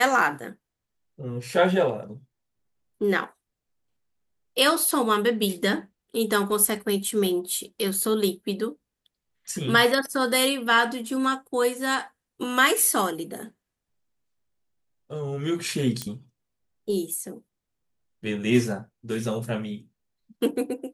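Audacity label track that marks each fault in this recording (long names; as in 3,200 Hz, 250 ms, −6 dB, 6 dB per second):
16.020000	16.020000	click −13 dBFS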